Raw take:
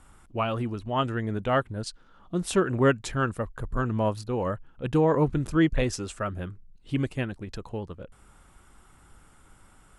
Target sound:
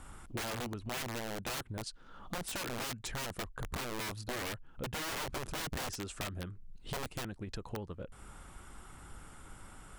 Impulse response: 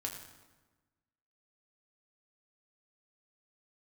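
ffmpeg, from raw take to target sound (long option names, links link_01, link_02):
-af "aeval=exprs='(tanh(5.01*val(0)+0.25)-tanh(0.25))/5.01':channel_layout=same,aeval=exprs='(mod(16.8*val(0)+1,2)-1)/16.8':channel_layout=same,acompressor=threshold=-44dB:ratio=4,volume=4.5dB"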